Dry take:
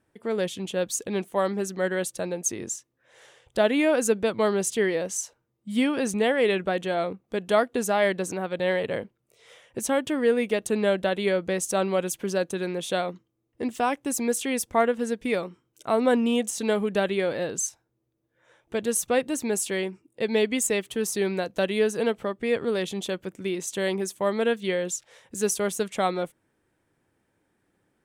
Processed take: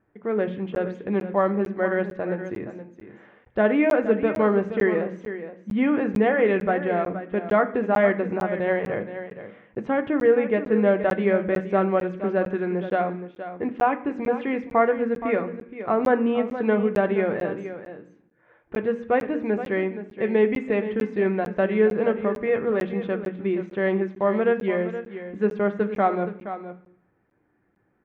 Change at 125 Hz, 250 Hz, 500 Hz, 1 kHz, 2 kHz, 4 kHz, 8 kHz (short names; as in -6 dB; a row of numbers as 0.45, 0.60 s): +4.5 dB, +3.5 dB, +3.0 dB, +4.0 dB, +1.5 dB, under -10 dB, under -30 dB